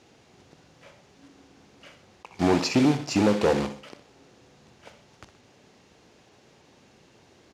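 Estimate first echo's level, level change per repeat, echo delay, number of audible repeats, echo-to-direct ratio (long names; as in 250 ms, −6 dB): −12.0 dB, −6.5 dB, 62 ms, 2, −11.0 dB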